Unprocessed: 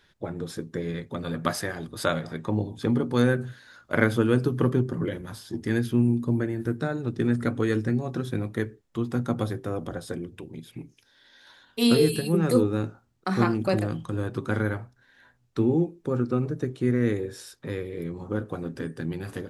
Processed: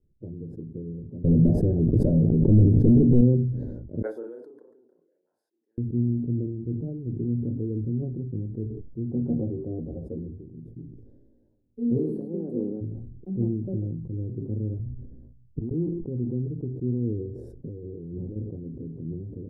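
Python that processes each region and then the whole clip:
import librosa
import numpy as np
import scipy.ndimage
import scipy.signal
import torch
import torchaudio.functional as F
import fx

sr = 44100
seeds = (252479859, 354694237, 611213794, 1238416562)

y = fx.chain(x, sr, fx.leveller(passes=5),
    fx.pre_swell(db_per_s=31.0), at=(1.24, 3.21))
y = fx.chain(y, sr, fx.ladder_highpass(hz=1100.0, resonance_pct=60),
    fx.doubler(ms=35.0, db=-3), at=(4.02, 5.78))
y = fx.chain(y, sr, fx.peak_eq(hz=850.0, db=11.0, octaves=1.8),
    fx.doubler(ms=13.0, db=-3.5), at=(9.11, 10.38))
y = fx.spec_clip(y, sr, under_db=18, at=(11.97, 12.8), fade=0.02)
y = fx.highpass(y, sr, hz=190.0, slope=24, at=(11.97, 12.8), fade=0.02)
y = fx.chain(y, sr, fx.gate_flip(shuts_db=-23.0, range_db=-36),
    fx.low_shelf(hz=260.0, db=11.5),
    fx.doubler(ms=13.0, db=-13), at=(14.79, 15.71))
y = fx.chain(y, sr, fx.leveller(passes=2),
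    fx.low_shelf(hz=76.0, db=-9.0),
    fx.over_compress(threshold_db=-32.0, ratio=-1.0), at=(17.58, 18.36))
y = scipy.signal.sosfilt(scipy.signal.cheby2(4, 50, 1100.0, 'lowpass', fs=sr, output='sos'), y)
y = fx.low_shelf(y, sr, hz=110.0, db=11.0)
y = fx.sustainer(y, sr, db_per_s=40.0)
y = y * 10.0 ** (-6.5 / 20.0)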